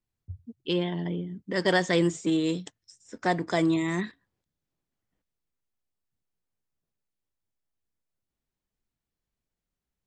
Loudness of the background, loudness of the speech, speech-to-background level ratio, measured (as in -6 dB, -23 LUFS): -46.5 LUFS, -27.5 LUFS, 19.0 dB